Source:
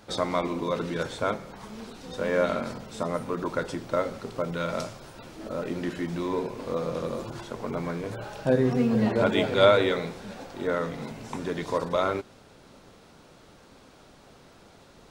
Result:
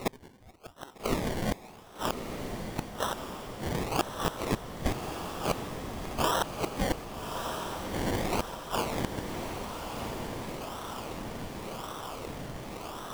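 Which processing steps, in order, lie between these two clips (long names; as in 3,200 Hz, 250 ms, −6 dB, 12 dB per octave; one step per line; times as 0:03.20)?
gliding playback speed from 148% → 82%
in parallel at +0.5 dB: downward compressor 5 to 1, threshold −33 dBFS, peak gain reduction 17.5 dB
on the sum: sine wavefolder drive 7 dB, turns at −3 dBFS
high-pass with resonance 1,200 Hz, resonance Q 2.7
gate with flip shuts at −10 dBFS, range −34 dB
sample-and-hold swept by an LFO 27×, swing 60% 0.9 Hz
on a send: feedback delay with all-pass diffusion 1,219 ms, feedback 58%, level −5.5 dB
on the sum: level −4.5 dB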